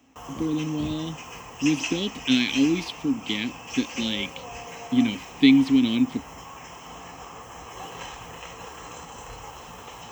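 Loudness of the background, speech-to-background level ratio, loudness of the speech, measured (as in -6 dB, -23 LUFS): -37.0 LUFS, 12.5 dB, -24.5 LUFS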